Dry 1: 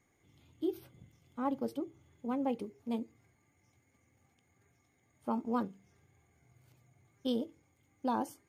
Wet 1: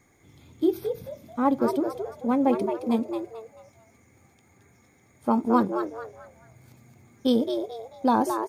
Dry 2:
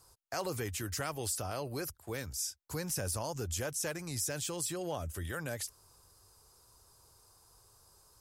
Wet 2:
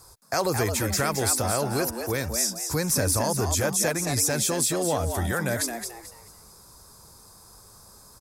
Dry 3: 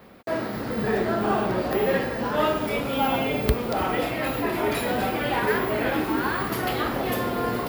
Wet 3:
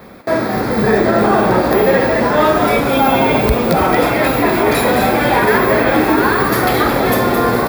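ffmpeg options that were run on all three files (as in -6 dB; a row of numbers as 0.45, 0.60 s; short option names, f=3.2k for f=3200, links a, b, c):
-filter_complex "[0:a]bandreject=f=2.9k:w=5.2,asplit=5[a][b][c][d][e];[b]adelay=219,afreqshift=110,volume=-7dB[f];[c]adelay=438,afreqshift=220,volume=-16.9dB[g];[d]adelay=657,afreqshift=330,volume=-26.8dB[h];[e]adelay=876,afreqshift=440,volume=-36.7dB[i];[a][f][g][h][i]amix=inputs=5:normalize=0,alimiter=level_in=13dB:limit=-1dB:release=50:level=0:latency=1,volume=-1.5dB"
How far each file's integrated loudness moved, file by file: +11.5, +12.0, +12.0 LU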